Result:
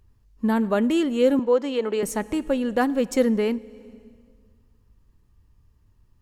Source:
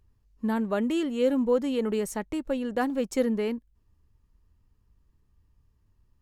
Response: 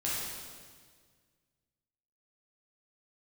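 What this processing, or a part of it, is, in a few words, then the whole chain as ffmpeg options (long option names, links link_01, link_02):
compressed reverb return: -filter_complex "[0:a]asplit=2[link_01][link_02];[1:a]atrim=start_sample=2205[link_03];[link_02][link_03]afir=irnorm=-1:irlink=0,acompressor=threshold=-25dB:ratio=6,volume=-18.5dB[link_04];[link_01][link_04]amix=inputs=2:normalize=0,asettb=1/sr,asplit=3[link_05][link_06][link_07];[link_05]atrim=end=1.394[link_08];[link_06]atrim=start=1.39:end=2.03,asetpts=PTS-STARTPTS,afade=type=in:duration=0.004:curve=qsin,afade=type=out:start_time=0.636:duration=0.004:curve=qsin,acrossover=split=290 7100:gain=0.126 1 0.141[link_09][link_10][link_11];[link_09][link_10][link_11]amix=inputs=3:normalize=0[link_12];[link_07]atrim=start=2.026[link_13];[link_08][link_12]acrossfade=duration=0.004:curve1=hsin:curve2=qsin[link_14];[link_14][link_13]acrossfade=duration=0.004:curve1=qsin:curve2=hsin,volume=5dB"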